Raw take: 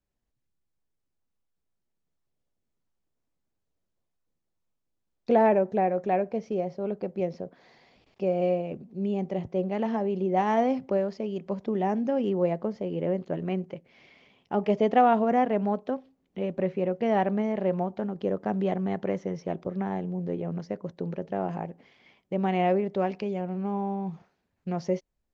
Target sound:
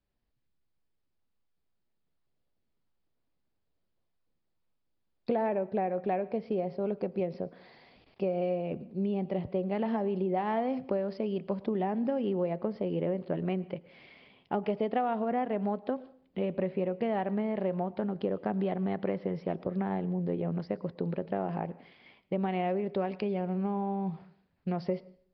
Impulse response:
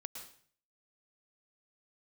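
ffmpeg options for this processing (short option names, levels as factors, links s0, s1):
-filter_complex "[0:a]acompressor=threshold=0.0398:ratio=6,asplit=2[s0][s1];[1:a]atrim=start_sample=2205[s2];[s1][s2]afir=irnorm=-1:irlink=0,volume=0.282[s3];[s0][s3]amix=inputs=2:normalize=0,aresample=11025,aresample=44100"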